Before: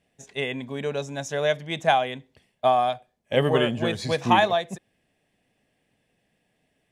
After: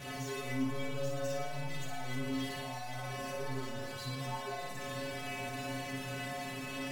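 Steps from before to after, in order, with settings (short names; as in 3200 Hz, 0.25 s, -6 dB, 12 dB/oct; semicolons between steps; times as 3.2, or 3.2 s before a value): infinite clipping; high shelf 3500 Hz -7 dB; metallic resonator 130 Hz, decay 0.7 s, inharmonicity 0.008; on a send: flutter echo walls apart 9.6 m, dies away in 0.77 s; on the sum: decimation joined by straight lines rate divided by 2×; gain +1 dB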